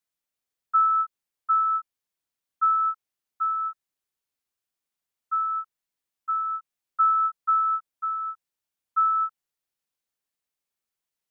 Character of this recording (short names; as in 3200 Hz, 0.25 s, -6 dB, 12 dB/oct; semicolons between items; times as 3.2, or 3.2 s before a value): noise floor -88 dBFS; spectral tilt -1.0 dB/oct